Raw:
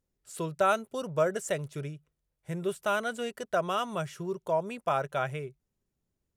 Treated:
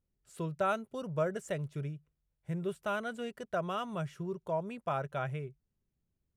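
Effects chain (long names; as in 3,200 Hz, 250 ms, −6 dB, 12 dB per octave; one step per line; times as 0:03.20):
bass and treble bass +7 dB, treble −6 dB
level −6 dB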